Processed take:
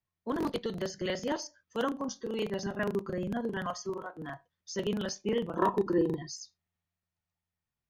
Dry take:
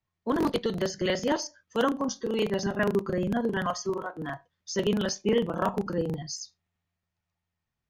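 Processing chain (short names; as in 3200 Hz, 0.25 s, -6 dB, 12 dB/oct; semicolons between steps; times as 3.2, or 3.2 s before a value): 5.57–6.3 small resonant body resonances 360/1000/1800/3800 Hz, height 16 dB; gain -6 dB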